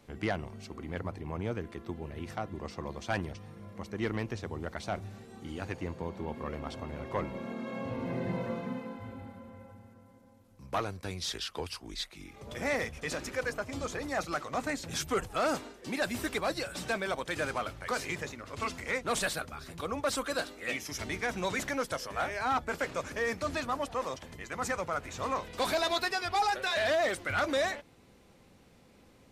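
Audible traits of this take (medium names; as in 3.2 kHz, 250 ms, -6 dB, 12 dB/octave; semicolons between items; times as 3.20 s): noise floor -59 dBFS; spectral tilt -4.0 dB/octave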